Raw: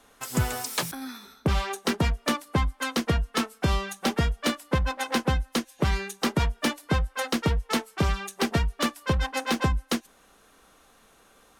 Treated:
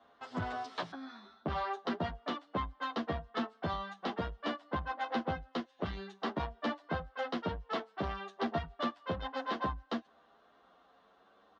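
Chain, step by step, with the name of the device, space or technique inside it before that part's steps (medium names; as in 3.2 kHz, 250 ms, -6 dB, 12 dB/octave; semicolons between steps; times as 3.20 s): barber-pole flanger into a guitar amplifier (endless flanger 9.7 ms +0.58 Hz; saturation -21.5 dBFS, distortion -16 dB; cabinet simulation 96–3800 Hz, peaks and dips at 130 Hz -10 dB, 690 Hz +8 dB, 1.1 kHz +4 dB, 2.4 kHz -9 dB); trim -4.5 dB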